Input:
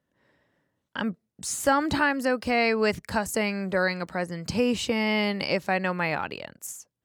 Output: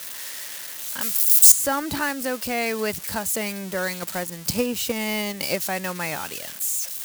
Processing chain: zero-crossing glitches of -19 dBFS; 1.01–1.52 s: tilt EQ +4.5 dB/octave; 4.02–5.56 s: transient shaper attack +7 dB, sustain -4 dB; trim -2.5 dB

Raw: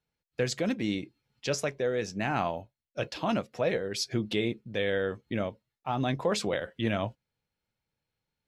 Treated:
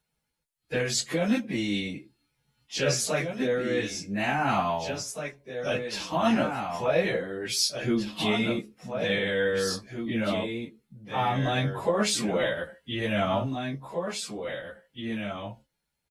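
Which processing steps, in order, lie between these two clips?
fifteen-band graphic EQ 100 Hz -5 dB, 400 Hz -4 dB, 10 kHz +8 dB; on a send: delay 1092 ms -7.5 dB; on the sum: plain phase-vocoder stretch 1.9×; trim +6.5 dB

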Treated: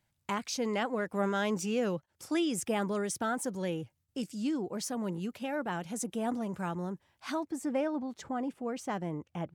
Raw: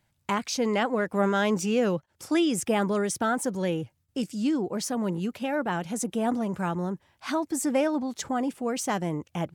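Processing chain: treble shelf 3.7 kHz +2 dB, from 7.43 s -10.5 dB; trim -6.5 dB

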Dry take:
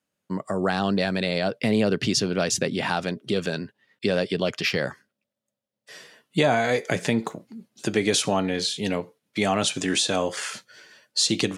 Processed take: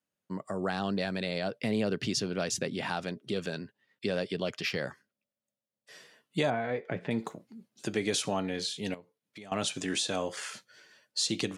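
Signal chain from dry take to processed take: 6.50–7.11 s: distance through air 490 m; 8.94–9.52 s: compression 3:1, threshold -43 dBFS, peak gain reduction 17.5 dB; trim -8 dB

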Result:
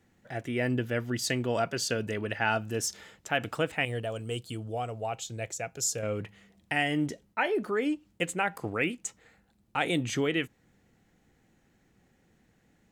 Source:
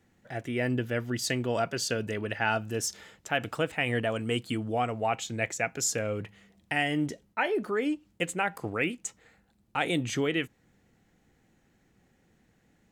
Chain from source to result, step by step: 3.85–6.03 s: graphic EQ 250/1000/2000 Hz -10/-6/-11 dB

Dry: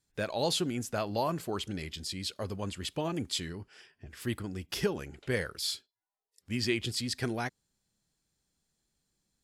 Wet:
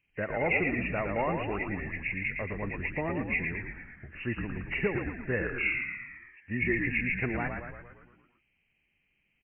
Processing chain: knee-point frequency compression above 1.7 kHz 4:1; frequency-shifting echo 113 ms, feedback 58%, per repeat -59 Hz, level -5 dB

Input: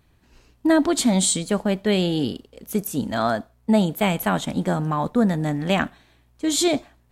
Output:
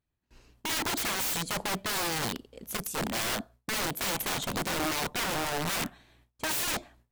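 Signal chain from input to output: gate with hold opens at -47 dBFS; integer overflow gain 22 dB; 2.77–3.24 s: three bands expanded up and down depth 100%; trim -3.5 dB

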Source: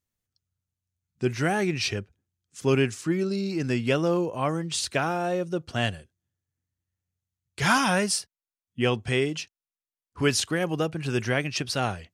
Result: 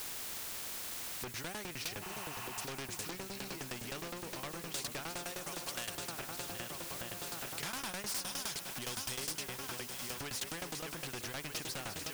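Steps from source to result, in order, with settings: backward echo that repeats 622 ms, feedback 65%, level -12 dB; 8.06–9.34 s: resonant high shelf 3 kHz +13.5 dB, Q 1.5; tremolo saw down 9.7 Hz, depth 100%; 5.25–5.95 s: RIAA curve recording; in parallel at -5 dB: word length cut 8-bit, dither triangular; 2.05–2.62 s: on the sum: spectral replace 650–3100 Hz after; saturation -24 dBFS, distortion -5 dB; on a send: echo whose repeats swap between lows and highs 408 ms, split 1.5 kHz, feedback 60%, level -13.5 dB; on the sum: compression 3:1, threshold -47 dBFS, peak gain reduction 16 dB; spectrum-flattening compressor 2:1; trim +4 dB

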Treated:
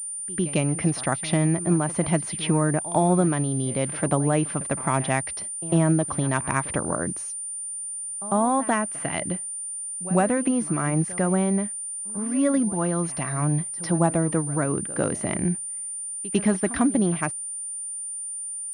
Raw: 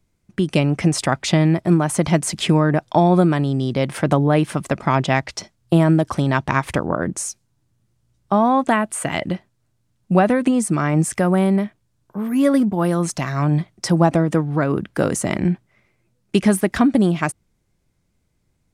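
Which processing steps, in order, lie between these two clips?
reverse echo 100 ms -17 dB; class-D stage that switches slowly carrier 9.2 kHz; trim -6 dB

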